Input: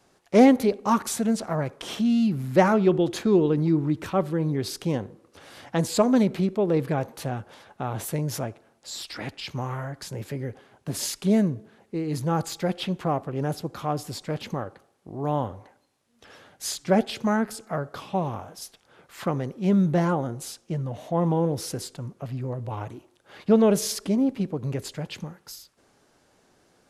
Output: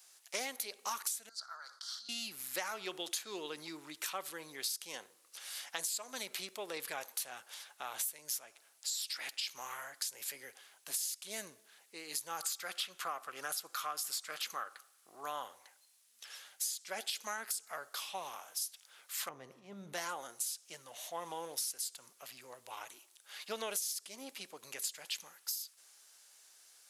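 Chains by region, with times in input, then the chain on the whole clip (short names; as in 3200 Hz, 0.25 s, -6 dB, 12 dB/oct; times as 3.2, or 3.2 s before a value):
1.29–2.09 double band-pass 2500 Hz, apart 1.7 oct + sustainer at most 95 dB/s
12.42–15.43 bell 1300 Hz +10.5 dB 0.66 oct + notch 910 Hz, Q 11
19.29–19.93 tilt -4.5 dB/oct + transient shaper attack -11 dB, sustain +7 dB + resonator 66 Hz, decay 1.7 s
whole clip: HPF 800 Hz 6 dB/oct; differentiator; compressor 20:1, threshold -44 dBFS; gain +9.5 dB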